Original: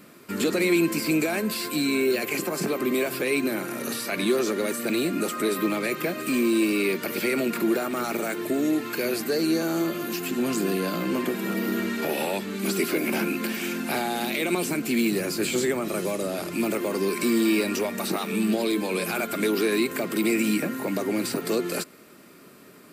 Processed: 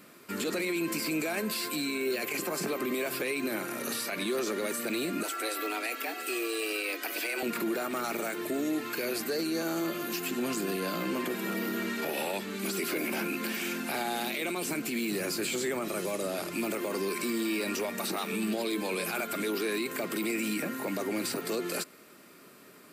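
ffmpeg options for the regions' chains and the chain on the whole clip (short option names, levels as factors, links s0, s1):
-filter_complex "[0:a]asettb=1/sr,asplit=3[s0][s1][s2];[s0]atrim=end=5.234[s3];[s1]atrim=start=5.23:end=7.43,asetpts=PTS-STARTPTS,afade=t=in:d=0.004:c=qsin,afade=t=out:st=2.196:d=0.004:c=qsin,equalizer=f=380:w=1.5:g=-11,afreqshift=110[s4];[s2]atrim=start=7.426[s5];[s3][s4]acrossfade=d=0.004:c1=hsin:c2=qsin[s6];[s6][s5]acrossfade=d=0.004:c1=qsin:c2=hsin,lowshelf=f=360:g=-6,alimiter=limit=0.0891:level=0:latency=1:release=29,volume=0.794"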